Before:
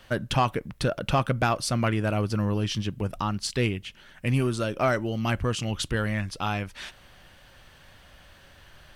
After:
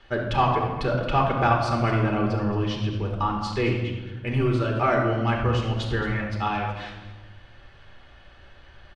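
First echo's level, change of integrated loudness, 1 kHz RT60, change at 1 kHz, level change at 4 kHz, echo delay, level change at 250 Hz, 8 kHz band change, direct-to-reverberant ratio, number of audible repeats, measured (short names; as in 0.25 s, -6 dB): -12.5 dB, +2.5 dB, 1.1 s, +5.5 dB, -2.0 dB, 0.221 s, +2.0 dB, under -10 dB, -0.5 dB, 1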